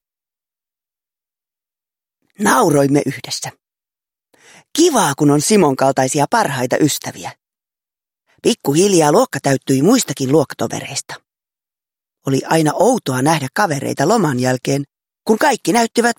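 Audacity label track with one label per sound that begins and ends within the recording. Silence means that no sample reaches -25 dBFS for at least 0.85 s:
2.400000	3.500000	sound
4.750000	7.300000	sound
8.440000	11.150000	sound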